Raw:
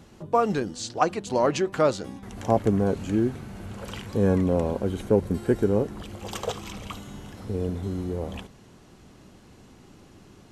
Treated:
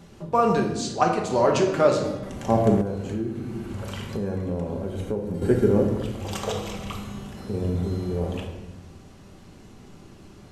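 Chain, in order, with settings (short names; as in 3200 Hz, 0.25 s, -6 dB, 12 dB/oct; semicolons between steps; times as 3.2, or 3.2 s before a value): shoebox room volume 520 m³, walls mixed, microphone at 1.2 m; 2.81–5.42 compressor 3:1, threshold -28 dBFS, peak gain reduction 11.5 dB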